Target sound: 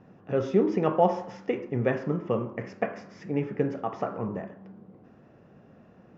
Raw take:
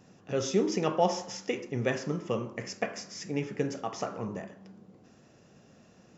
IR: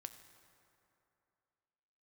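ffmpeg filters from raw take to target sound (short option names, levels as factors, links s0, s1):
-af "lowpass=1700,volume=1.58"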